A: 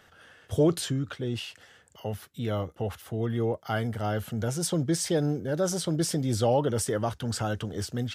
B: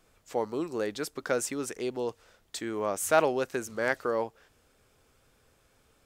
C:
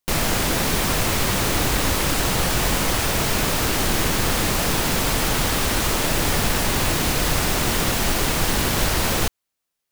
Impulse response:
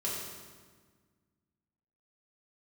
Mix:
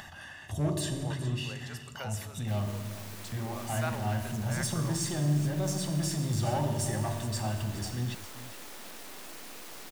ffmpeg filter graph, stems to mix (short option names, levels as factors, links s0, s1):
-filter_complex "[0:a]equalizer=f=7200:w=5:g=3.5,aecho=1:1:1.1:0.86,volume=1.26,asplit=3[s0][s1][s2];[s0]atrim=end=2.69,asetpts=PTS-STARTPTS,afade=t=out:st=2.686:d=0.004:c=hsin[s3];[s1]atrim=start=2.69:end=3.32,asetpts=PTS-STARTPTS,volume=0[s4];[s2]atrim=start=3.32,asetpts=PTS-STARTPTS,afade=t=in:d=0.004:c=hsin[s5];[s3][s4][s5]concat=n=3:v=0:a=1,asplit=3[s6][s7][s8];[s7]volume=0.158[s9];[s8]volume=0.0708[s10];[1:a]highpass=790,adelay=700,volume=0.282,asplit=2[s11][s12];[s12]volume=0.299[s13];[2:a]highpass=f=220:w=0.5412,highpass=f=220:w=1.3066,aeval=exprs='max(val(0),0)':c=same,acrusher=bits=4:mix=0:aa=0.000001,adelay=2400,volume=0.282,asplit=2[s14][s15];[s15]volume=0.178[s16];[s6][s14]amix=inputs=2:normalize=0,asoftclip=type=hard:threshold=0.0668,alimiter=level_in=3.55:limit=0.0631:level=0:latency=1:release=65,volume=0.282,volume=1[s17];[3:a]atrim=start_sample=2205[s18];[s9][s13]amix=inputs=2:normalize=0[s19];[s19][s18]afir=irnorm=-1:irlink=0[s20];[s10][s16]amix=inputs=2:normalize=0,aecho=0:1:416:1[s21];[s11][s17][s20][s21]amix=inputs=4:normalize=0,acompressor=mode=upward:threshold=0.00891:ratio=2.5"